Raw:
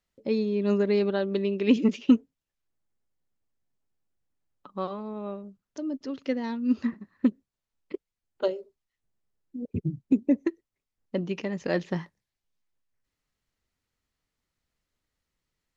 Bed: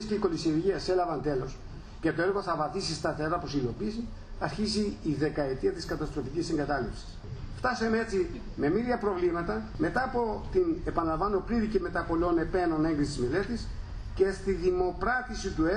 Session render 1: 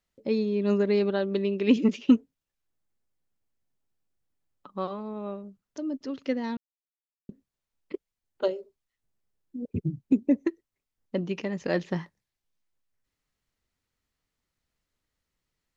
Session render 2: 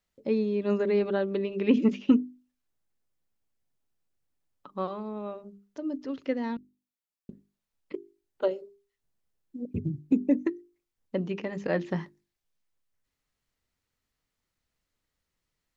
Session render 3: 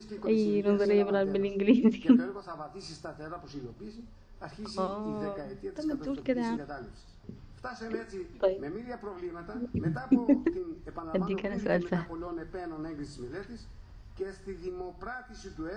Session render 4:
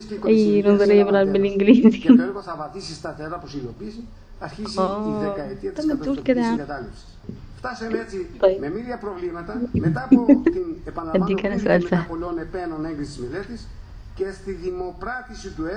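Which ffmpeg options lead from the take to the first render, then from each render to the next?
-filter_complex "[0:a]asplit=3[a][b][c];[a]atrim=end=6.57,asetpts=PTS-STARTPTS,afade=t=out:st=6.566:d=0.004:c=hsin[d];[b]atrim=start=6.57:end=7.29,asetpts=PTS-STARTPTS,volume=0[e];[c]atrim=start=7.29,asetpts=PTS-STARTPTS,afade=t=in:d=0.004:c=hsin[f];[d][e][f]concat=n=3:v=0:a=1"
-filter_complex "[0:a]acrossover=split=2900[a][b];[b]acompressor=threshold=-55dB:ratio=4:attack=1:release=60[c];[a][c]amix=inputs=2:normalize=0,bandreject=f=50:t=h:w=6,bandreject=f=100:t=h:w=6,bandreject=f=150:t=h:w=6,bandreject=f=200:t=h:w=6,bandreject=f=250:t=h:w=6,bandreject=f=300:t=h:w=6,bandreject=f=350:t=h:w=6,bandreject=f=400:t=h:w=6"
-filter_complex "[1:a]volume=-11.5dB[a];[0:a][a]amix=inputs=2:normalize=0"
-af "volume=10.5dB,alimiter=limit=-2dB:level=0:latency=1"

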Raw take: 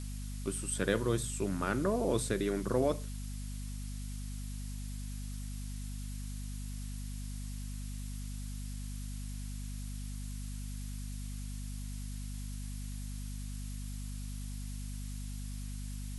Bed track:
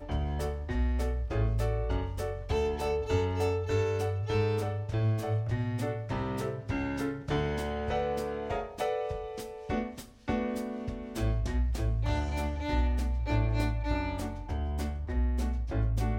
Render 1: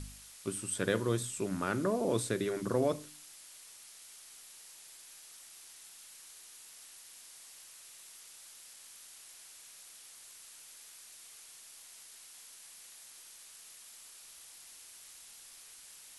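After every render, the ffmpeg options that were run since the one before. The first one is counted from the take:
-af "bandreject=f=50:t=h:w=4,bandreject=f=100:t=h:w=4,bandreject=f=150:t=h:w=4,bandreject=f=200:t=h:w=4,bandreject=f=250:t=h:w=4,bandreject=f=300:t=h:w=4"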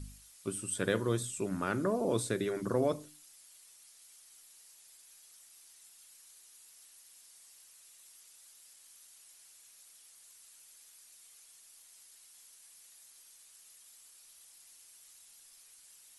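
-af "afftdn=nr=9:nf=-54"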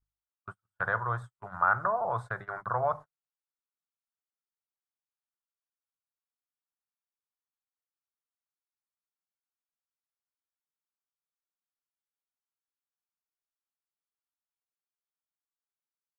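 -af "firequalizer=gain_entry='entry(130,0);entry(260,-25);entry(740,12);entry(1400,13);entry(2500,-16);entry(6600,-24);entry(11000,-28)':delay=0.05:min_phase=1,agate=range=-42dB:threshold=-39dB:ratio=16:detection=peak"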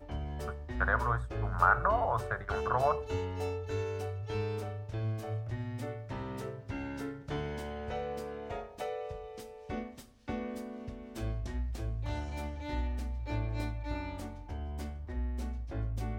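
-filter_complex "[1:a]volume=-6.5dB[a];[0:a][a]amix=inputs=2:normalize=0"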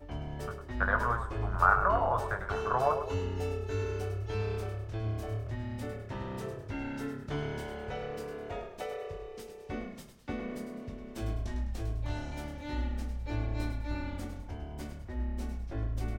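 -filter_complex "[0:a]asplit=2[a][b];[b]adelay=21,volume=-7.5dB[c];[a][c]amix=inputs=2:normalize=0,asplit=5[d][e][f][g][h];[e]adelay=103,afreqshift=-34,volume=-9dB[i];[f]adelay=206,afreqshift=-68,volume=-17dB[j];[g]adelay=309,afreqshift=-102,volume=-24.9dB[k];[h]adelay=412,afreqshift=-136,volume=-32.9dB[l];[d][i][j][k][l]amix=inputs=5:normalize=0"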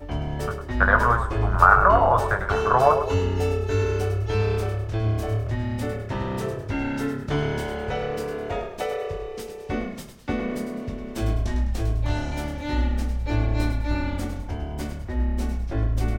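-af "volume=10.5dB,alimiter=limit=-2dB:level=0:latency=1"

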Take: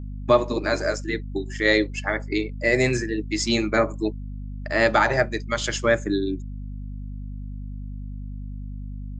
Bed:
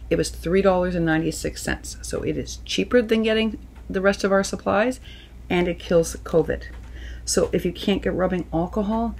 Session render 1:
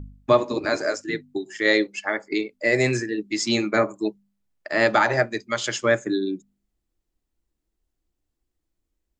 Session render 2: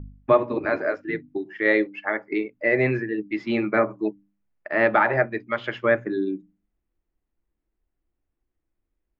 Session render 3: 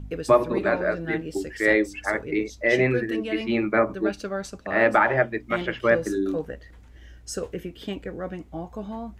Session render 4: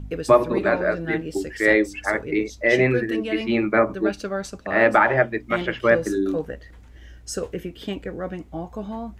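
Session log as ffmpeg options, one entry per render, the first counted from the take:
-af "bandreject=f=50:t=h:w=4,bandreject=f=100:t=h:w=4,bandreject=f=150:t=h:w=4,bandreject=f=200:t=h:w=4,bandreject=f=250:t=h:w=4"
-af "lowpass=f=2.5k:w=0.5412,lowpass=f=2.5k:w=1.3066,bandreject=f=60:t=h:w=6,bandreject=f=120:t=h:w=6,bandreject=f=180:t=h:w=6,bandreject=f=240:t=h:w=6,bandreject=f=300:t=h:w=6"
-filter_complex "[1:a]volume=-11dB[a];[0:a][a]amix=inputs=2:normalize=0"
-af "volume=2.5dB"

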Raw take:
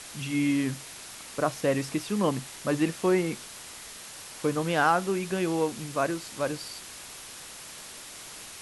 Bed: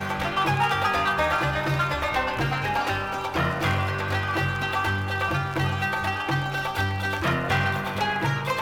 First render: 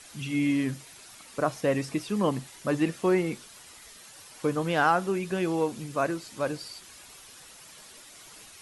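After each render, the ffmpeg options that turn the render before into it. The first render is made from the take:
-af "afftdn=nr=9:nf=-44"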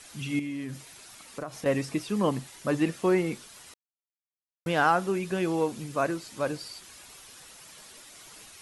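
-filter_complex "[0:a]asettb=1/sr,asplit=3[a][b][c];[a]atrim=end=0.394[d];[b]atrim=start=0.39:end=1.66,asetpts=PTS-STARTPTS,afade=t=in:d=0.004:c=qsin,afade=t=out:st=1.266:d=0.004:c=qsin,acompressor=threshold=-32dB:ratio=6:attack=3.2:release=140:knee=1:detection=peak[e];[c]atrim=start=1.656[f];[d][e]acrossfade=d=0.004:c1=hsin:c2=qsin[g];[g][f]acrossfade=d=0.004:c1=qsin:c2=hsin,asplit=3[h][i][j];[h]atrim=end=3.74,asetpts=PTS-STARTPTS,afade=t=out:st=3.736:d=0.004:c=hsin[k];[i]atrim=start=3.74:end=4.66,asetpts=PTS-STARTPTS,volume=0[l];[j]atrim=start=4.66,asetpts=PTS-STARTPTS,afade=t=in:d=0.004:c=hsin[m];[k][l][m]concat=n=3:v=0:a=1"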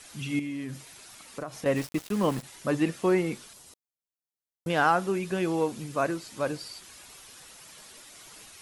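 -filter_complex "[0:a]asplit=3[a][b][c];[a]afade=t=out:st=1.75:d=0.02[d];[b]aeval=exprs='val(0)*gte(abs(val(0)),0.0178)':c=same,afade=t=in:st=1.75:d=0.02,afade=t=out:st=2.42:d=0.02[e];[c]afade=t=in:st=2.42:d=0.02[f];[d][e][f]amix=inputs=3:normalize=0,asettb=1/sr,asplit=3[g][h][i];[g]atrim=end=3.534[j];[h]atrim=start=3.53:end=4.7,asetpts=PTS-STARTPTS,afade=t=in:d=0.004:c=qsin,afade=t=out:st=1.166:d=0.004:c=qsin,equalizer=f=1.9k:t=o:w=1.9:g=-10[k];[i]atrim=start=4.696[l];[j][k]acrossfade=d=0.004:c1=hsin:c2=qsin[m];[m][l]acrossfade=d=0.004:c1=qsin:c2=hsin"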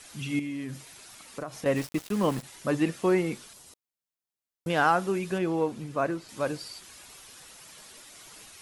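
-filter_complex "[0:a]asettb=1/sr,asplit=3[a][b][c];[a]atrim=end=5.384[d];[b]atrim=start=5.38:end=6.29,asetpts=PTS-STARTPTS,afade=t=in:d=0.004:c=qsin,afade=t=out:st=0.906:d=0.004:c=qsin,highshelf=f=3.5k:g=-10[e];[c]atrim=start=6.286[f];[d][e]acrossfade=d=0.004:c1=hsin:c2=qsin[g];[g][f]acrossfade=d=0.004:c1=qsin:c2=hsin"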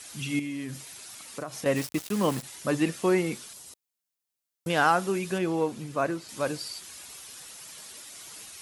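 -af "highpass=52,highshelf=f=3.4k:g=6.5"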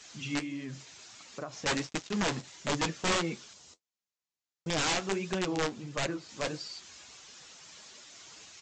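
-af "aresample=16000,aeval=exprs='(mod(9.44*val(0)+1,2)-1)/9.44':c=same,aresample=44100,flanger=delay=4.8:depth=8.2:regen=-46:speed=1.5:shape=sinusoidal"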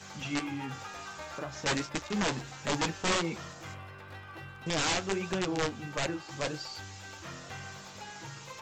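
-filter_complex "[1:a]volume=-20.5dB[a];[0:a][a]amix=inputs=2:normalize=0"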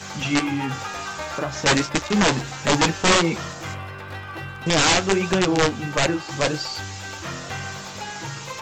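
-af "volume=12dB"

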